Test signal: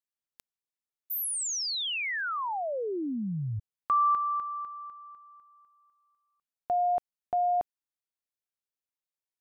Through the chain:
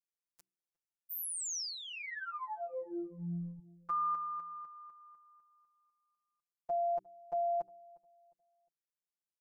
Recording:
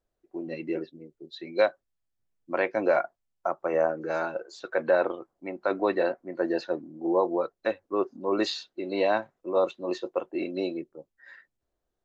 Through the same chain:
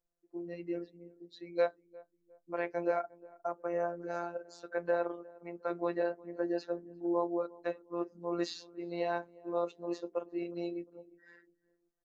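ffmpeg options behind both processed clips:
-filter_complex "[0:a]asplit=2[a][b];[b]adelay=356,lowpass=f=910:p=1,volume=-21dB,asplit=2[c][d];[d]adelay=356,lowpass=f=910:p=1,volume=0.38,asplit=2[e][f];[f]adelay=356,lowpass=f=910:p=1,volume=0.38[g];[a][c][e][g]amix=inputs=4:normalize=0,afftfilt=real='hypot(re,im)*cos(PI*b)':imag='0':win_size=1024:overlap=0.75,aexciter=amount=3.3:drive=7.5:freq=5k,aemphasis=mode=reproduction:type=75kf,bandreject=f=63.2:t=h:w=4,bandreject=f=126.4:t=h:w=4,bandreject=f=189.6:t=h:w=4,bandreject=f=252.8:t=h:w=4,bandreject=f=316:t=h:w=4,bandreject=f=379.2:t=h:w=4,bandreject=f=442.4:t=h:w=4,volume=-4.5dB"

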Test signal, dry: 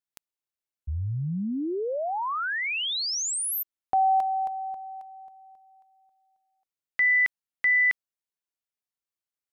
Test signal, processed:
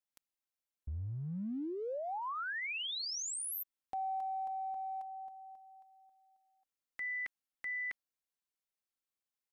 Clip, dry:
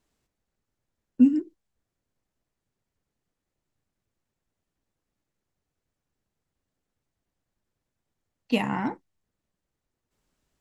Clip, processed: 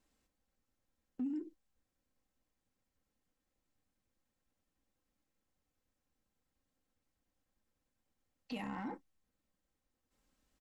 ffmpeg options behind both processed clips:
-af "aecho=1:1:3.8:0.47,acompressor=threshold=-34dB:ratio=5:attack=0.13:release=32:knee=1:detection=rms,volume=-3.5dB"

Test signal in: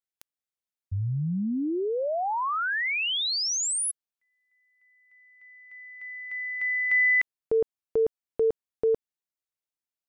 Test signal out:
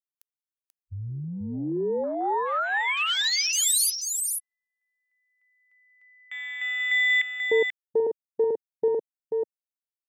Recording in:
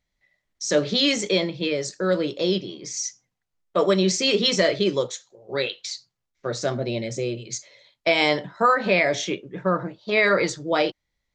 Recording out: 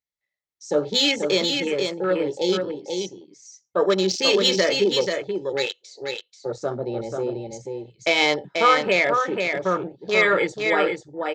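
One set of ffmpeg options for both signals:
-af "highpass=f=190:p=1,afwtdn=0.0316,highshelf=f=7.5k:g=10.5,aecho=1:1:2.3:0.31,aecho=1:1:486:0.562"

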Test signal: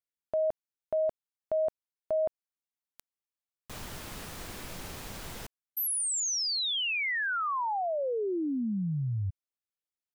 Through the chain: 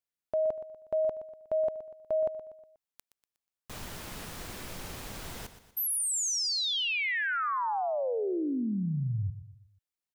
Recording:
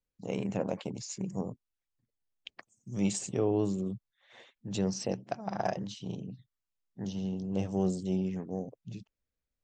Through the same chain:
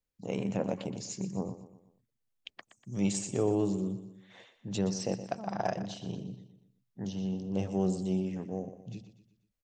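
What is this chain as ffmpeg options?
-af "aecho=1:1:121|242|363|484:0.237|0.107|0.048|0.0216"

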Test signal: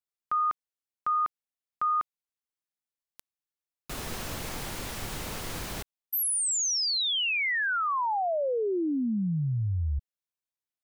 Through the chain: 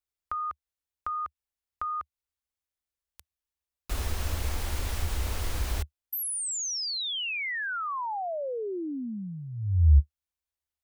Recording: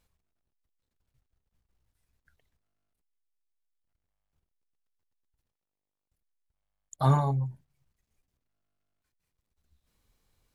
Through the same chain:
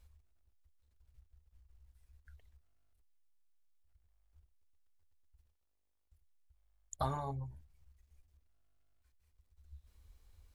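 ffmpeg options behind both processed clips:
-af "acompressor=threshold=-30dB:ratio=6:attack=7.9:release=813:knee=1:detection=peak,lowshelf=f=100:t=q:w=3:g=10"

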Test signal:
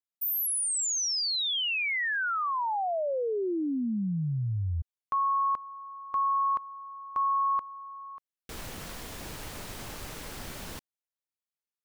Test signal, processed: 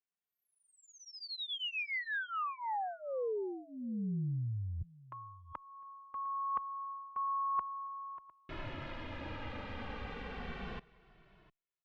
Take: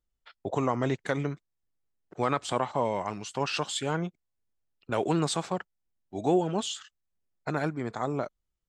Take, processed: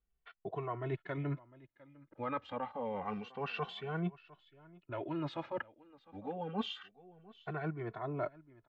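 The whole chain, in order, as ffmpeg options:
-filter_complex "[0:a]lowpass=f=3k:w=0.5412,lowpass=f=3k:w=1.3066,areverse,acompressor=threshold=-37dB:ratio=6:attack=97:release=338:knee=1:detection=rms,areverse,aecho=1:1:704:0.0891,asplit=2[a][b];[b]adelay=2.2,afreqshift=-0.28[c];[a][c]amix=inputs=2:normalize=1,volume=2dB"

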